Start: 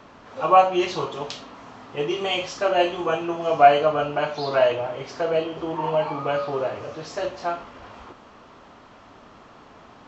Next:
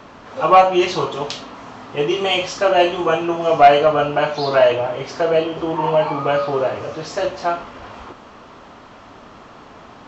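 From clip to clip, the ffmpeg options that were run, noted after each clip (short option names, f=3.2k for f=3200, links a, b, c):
-af "acontrast=67"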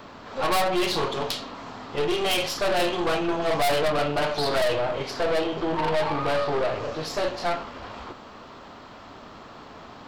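-filter_complex "[0:a]aeval=exprs='(tanh(11.2*val(0)+0.55)-tanh(0.55))/11.2':c=same,acrossover=split=2800[a][b];[b]aexciter=amount=1.8:drive=2.7:freq=3.6k[c];[a][c]amix=inputs=2:normalize=0"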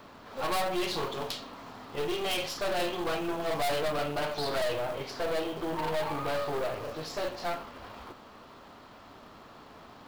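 -af "acrusher=bits=5:mode=log:mix=0:aa=0.000001,volume=-7dB"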